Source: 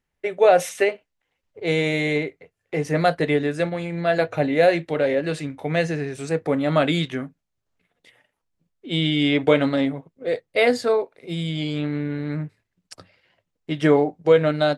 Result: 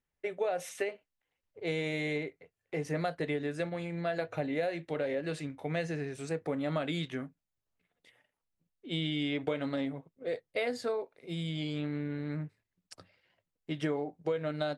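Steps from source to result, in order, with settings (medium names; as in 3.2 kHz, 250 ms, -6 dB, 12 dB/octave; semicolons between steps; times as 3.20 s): compression 6:1, threshold -20 dBFS, peak gain reduction 10 dB; trim -9 dB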